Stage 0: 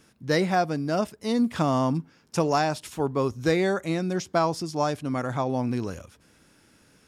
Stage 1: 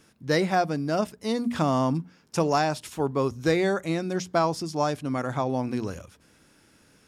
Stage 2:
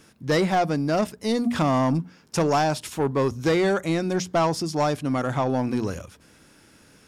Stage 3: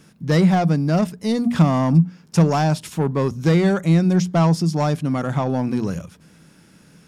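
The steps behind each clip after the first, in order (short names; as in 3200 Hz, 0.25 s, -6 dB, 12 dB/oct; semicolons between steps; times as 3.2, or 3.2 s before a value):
notches 60/120/180/240 Hz
soft clip -20 dBFS, distortion -14 dB; gain +5 dB
bell 170 Hz +14.5 dB 0.53 oct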